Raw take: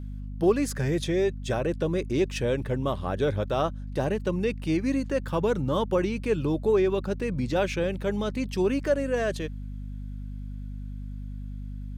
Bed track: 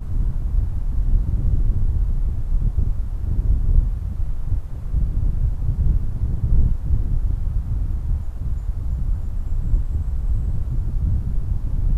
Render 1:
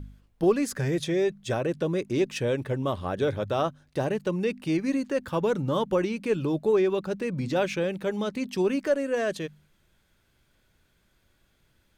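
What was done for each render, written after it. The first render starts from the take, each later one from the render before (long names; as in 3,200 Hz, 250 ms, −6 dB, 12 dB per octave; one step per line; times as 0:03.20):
hum removal 50 Hz, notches 5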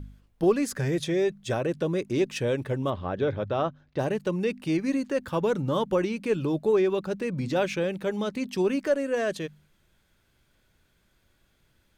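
0:02.90–0:03.99: high-frequency loss of the air 180 metres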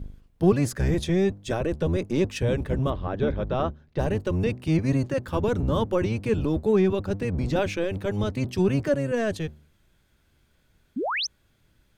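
sub-octave generator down 1 octave, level +3 dB
0:10.96–0:11.27: sound drawn into the spectrogram rise 210–6,500 Hz −27 dBFS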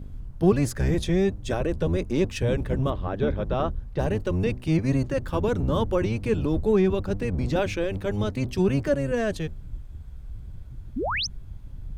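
mix in bed track −17 dB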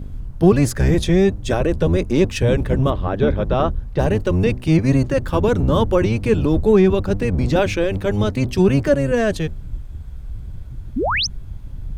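level +7.5 dB
brickwall limiter −3 dBFS, peak gain reduction 2 dB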